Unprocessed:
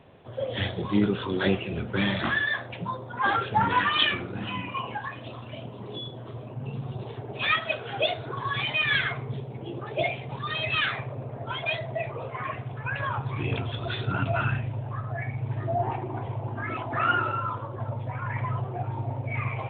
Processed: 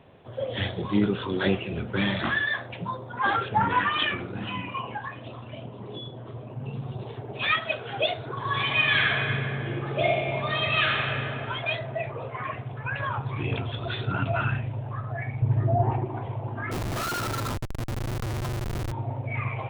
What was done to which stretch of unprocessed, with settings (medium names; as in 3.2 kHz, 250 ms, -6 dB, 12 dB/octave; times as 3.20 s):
3.48–4.17 s: low-pass 3.4 kHz -> 2.5 kHz
4.76–6.50 s: distance through air 140 m
8.36–11.28 s: reverb throw, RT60 2.6 s, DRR -1 dB
15.42–16.05 s: tilt EQ -2.5 dB/octave
16.71–18.92 s: Schmitt trigger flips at -29.5 dBFS